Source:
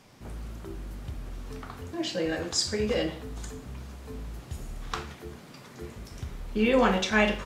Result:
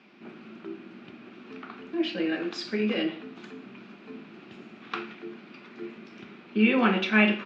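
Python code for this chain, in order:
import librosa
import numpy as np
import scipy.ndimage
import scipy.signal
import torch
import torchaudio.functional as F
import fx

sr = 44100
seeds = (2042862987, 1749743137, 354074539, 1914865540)

y = fx.cabinet(x, sr, low_hz=200.0, low_slope=24, high_hz=4100.0, hz=(210.0, 350.0, 510.0, 920.0, 1400.0, 2500.0), db=(9, 9, -6, -3, 5, 10))
y = y * 10.0 ** (-2.0 / 20.0)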